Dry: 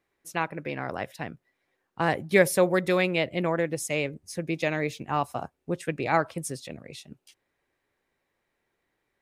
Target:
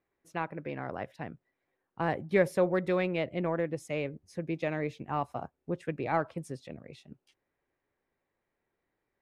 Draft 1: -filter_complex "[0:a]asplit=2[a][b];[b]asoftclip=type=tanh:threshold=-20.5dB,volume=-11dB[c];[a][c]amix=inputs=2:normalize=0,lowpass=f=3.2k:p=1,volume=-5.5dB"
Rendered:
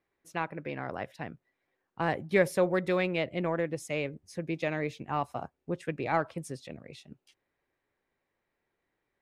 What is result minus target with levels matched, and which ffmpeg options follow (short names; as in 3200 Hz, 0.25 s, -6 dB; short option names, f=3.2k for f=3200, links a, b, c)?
4000 Hz band +4.0 dB
-filter_complex "[0:a]asplit=2[a][b];[b]asoftclip=type=tanh:threshold=-20.5dB,volume=-11dB[c];[a][c]amix=inputs=2:normalize=0,lowpass=f=1.5k:p=1,volume=-5.5dB"